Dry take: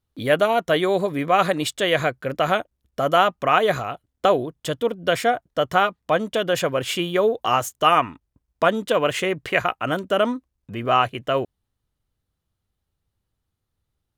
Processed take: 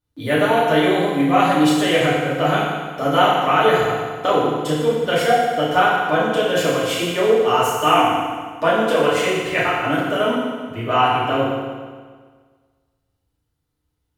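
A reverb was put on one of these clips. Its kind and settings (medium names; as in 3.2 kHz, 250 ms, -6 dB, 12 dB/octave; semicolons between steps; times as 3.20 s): FDN reverb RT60 1.6 s, low-frequency decay 1.05×, high-frequency decay 0.9×, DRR -8.5 dB; trim -5.5 dB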